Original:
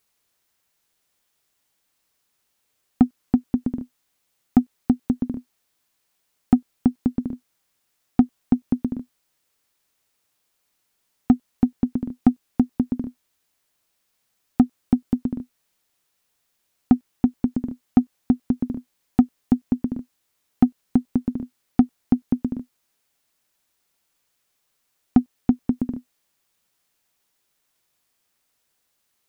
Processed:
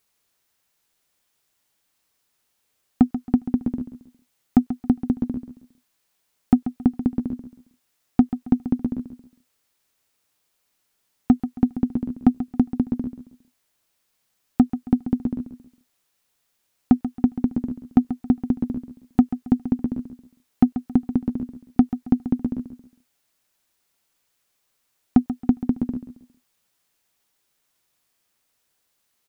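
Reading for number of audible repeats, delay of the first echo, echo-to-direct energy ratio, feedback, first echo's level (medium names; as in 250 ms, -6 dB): 3, 136 ms, -11.5 dB, 31%, -12.0 dB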